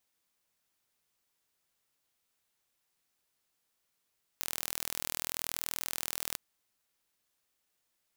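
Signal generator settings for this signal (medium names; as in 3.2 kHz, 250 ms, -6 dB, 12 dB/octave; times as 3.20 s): pulse train 40.7 per s, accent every 0, -7.5 dBFS 1.96 s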